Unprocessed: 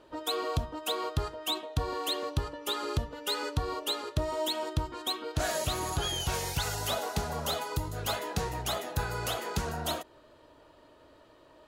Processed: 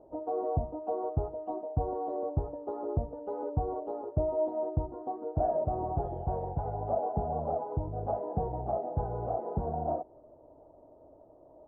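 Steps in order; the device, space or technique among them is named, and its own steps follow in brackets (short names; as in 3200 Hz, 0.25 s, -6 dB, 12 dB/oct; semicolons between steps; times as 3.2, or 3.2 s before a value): under water (LPF 700 Hz 24 dB/oct; bell 750 Hz +11 dB 0.57 oct)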